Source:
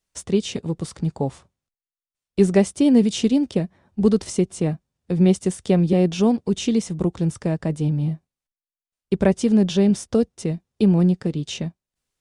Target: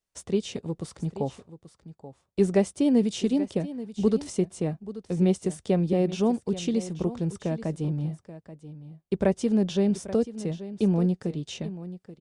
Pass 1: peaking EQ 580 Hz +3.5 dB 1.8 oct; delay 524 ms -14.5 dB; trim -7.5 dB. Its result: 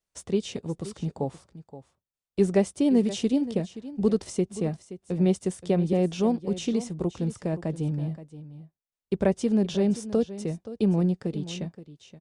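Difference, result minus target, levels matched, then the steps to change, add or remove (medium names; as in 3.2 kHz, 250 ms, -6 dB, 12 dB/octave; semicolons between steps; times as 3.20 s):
echo 308 ms early
change: delay 832 ms -14.5 dB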